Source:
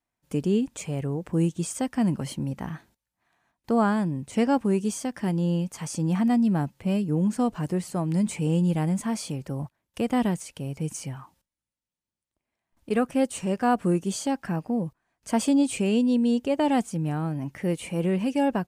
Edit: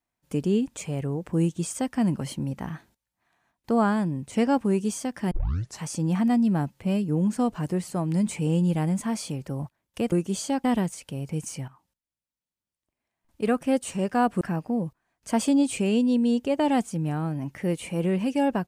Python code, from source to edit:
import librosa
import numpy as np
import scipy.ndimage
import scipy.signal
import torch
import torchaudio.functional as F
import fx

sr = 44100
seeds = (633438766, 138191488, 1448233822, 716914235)

y = fx.edit(x, sr, fx.tape_start(start_s=5.31, length_s=0.5),
    fx.fade_in_from(start_s=11.16, length_s=1.86, curve='qsin', floor_db=-13.0),
    fx.move(start_s=13.89, length_s=0.52, to_s=10.12), tone=tone)